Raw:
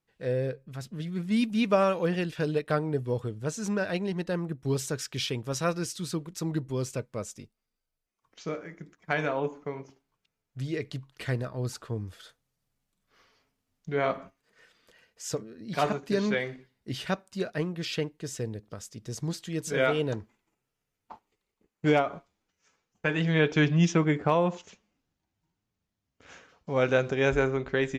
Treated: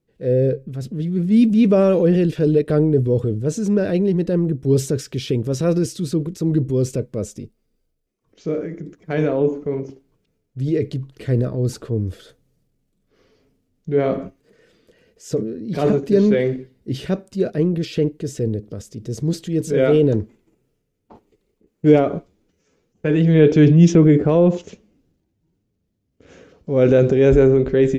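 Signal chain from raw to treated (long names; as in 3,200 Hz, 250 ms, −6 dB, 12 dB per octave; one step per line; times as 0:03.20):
transient designer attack −3 dB, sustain +6 dB
low shelf with overshoot 630 Hz +11.5 dB, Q 1.5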